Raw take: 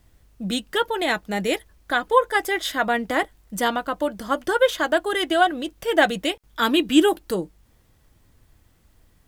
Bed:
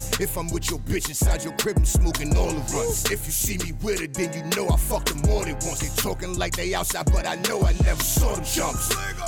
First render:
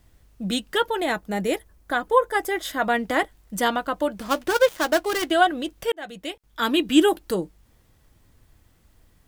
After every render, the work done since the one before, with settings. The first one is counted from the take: 1.00–2.82 s: peaking EQ 3.3 kHz -6 dB 2.2 oct; 4.17–5.31 s: dead-time distortion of 0.14 ms; 5.92–7.31 s: fade in equal-power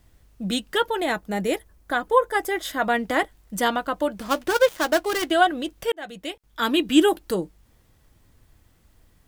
no audible change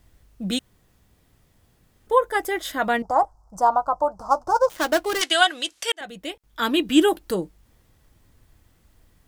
0.59–2.07 s: room tone; 3.02–4.70 s: FFT filter 130 Hz 0 dB, 210 Hz -13 dB, 430 Hz -7 dB, 850 Hz +11 dB, 1.3 kHz +1 dB, 1.9 kHz -29 dB, 3.4 kHz -29 dB, 5.2 kHz -4 dB, 7.6 kHz -8 dB, 12 kHz -18 dB; 5.21–6.01 s: frequency weighting ITU-R 468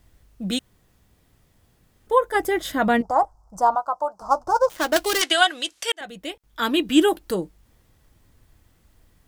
2.34–3.01 s: peaking EQ 120 Hz +11 dB 2.9 oct; 3.75–4.22 s: high-pass 730 Hz 6 dB/octave; 4.96–5.38 s: three bands compressed up and down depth 100%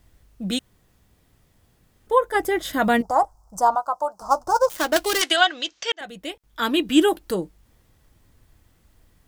2.73–4.82 s: treble shelf 5.2 kHz +10 dB; 5.36–5.99 s: steep low-pass 6.8 kHz 48 dB/octave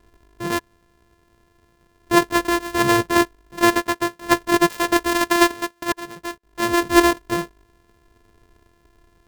sorted samples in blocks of 128 samples; small resonant body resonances 430/1000/1700 Hz, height 8 dB, ringing for 35 ms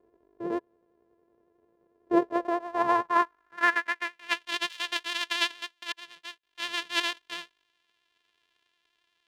vibrato 11 Hz 35 cents; band-pass sweep 460 Hz -> 3.2 kHz, 2.13–4.51 s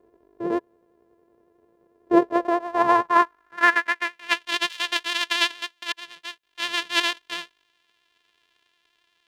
trim +6 dB; peak limiter -3 dBFS, peak gain reduction 1 dB

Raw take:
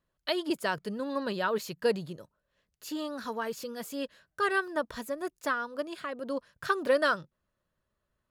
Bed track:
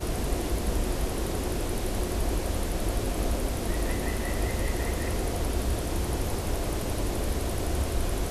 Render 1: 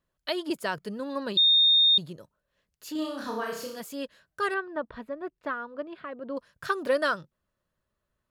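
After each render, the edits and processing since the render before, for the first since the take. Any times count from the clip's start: 1.37–1.98 s: bleep 3.67 kHz -16.5 dBFS; 2.92–3.80 s: flutter echo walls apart 5.5 m, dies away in 0.59 s; 4.54–6.37 s: distance through air 410 m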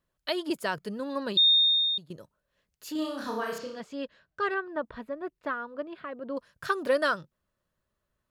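1.48–2.10 s: fade out, to -17 dB; 3.58–4.66 s: distance through air 140 m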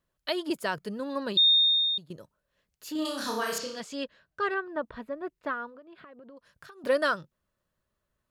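3.05–4.04 s: peaking EQ 8.3 kHz +13 dB 2.7 oct; 5.69–6.84 s: compression 12:1, threshold -46 dBFS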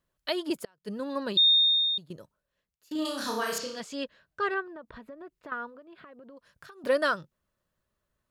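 0.54–0.99 s: inverted gate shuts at -23 dBFS, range -34 dB; 2.18–2.91 s: fade out, to -24 dB; 4.62–5.52 s: compression, threshold -41 dBFS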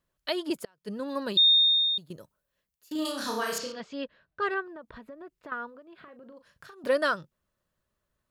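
1.08–3.12 s: treble shelf 9.7 kHz +9 dB; 3.72–4.42 s: distance through air 180 m; 5.96–6.75 s: doubling 38 ms -10.5 dB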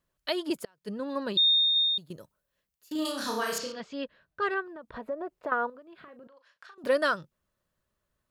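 0.90–1.76 s: treble shelf 5.9 kHz -10 dB; 4.94–5.70 s: peaking EQ 640 Hz +13.5 dB 1.9 oct; 6.27–6.78 s: band-pass 770–5300 Hz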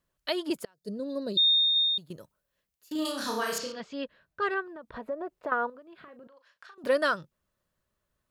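0.74–1.42 s: time-frequency box 730–3600 Hz -14 dB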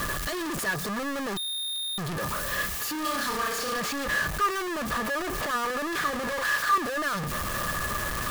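one-bit comparator; small resonant body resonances 1.2/1.7 kHz, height 16 dB, ringing for 55 ms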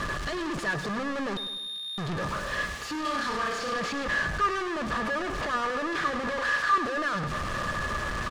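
distance through air 98 m; feedback delay 102 ms, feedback 48%, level -11.5 dB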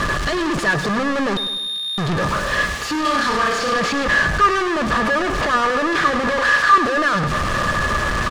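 trim +11 dB

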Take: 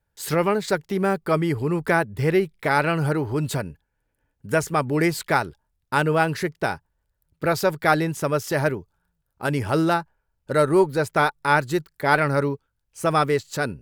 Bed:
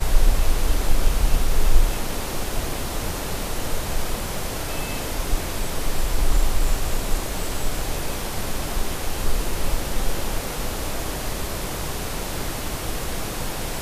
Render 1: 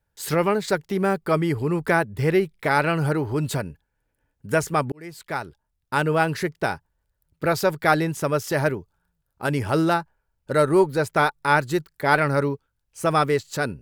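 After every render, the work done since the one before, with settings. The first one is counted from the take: 4.92–6.54 s: fade in equal-power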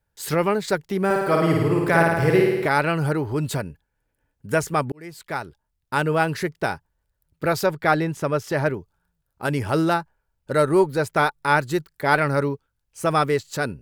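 1.05–2.66 s: flutter echo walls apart 9.3 m, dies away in 1.2 s; 7.66–8.74 s: treble shelf 5.7 kHz -9.5 dB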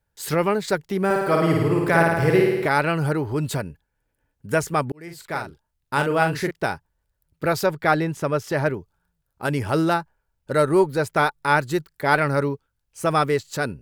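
5.03–6.51 s: doubling 42 ms -6 dB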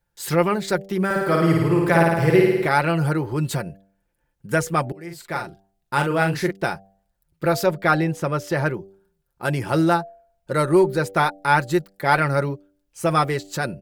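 comb 5.7 ms, depth 48%; de-hum 97.44 Hz, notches 8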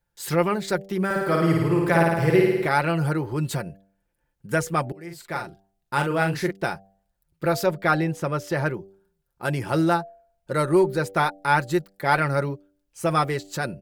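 trim -2.5 dB

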